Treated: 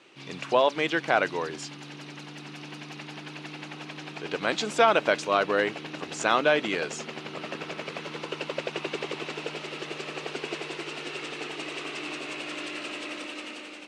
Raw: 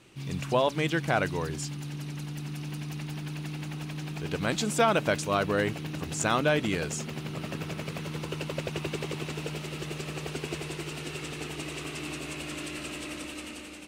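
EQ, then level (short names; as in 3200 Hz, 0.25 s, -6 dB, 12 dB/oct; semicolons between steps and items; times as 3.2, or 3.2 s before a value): BPF 360–4900 Hz; +4.0 dB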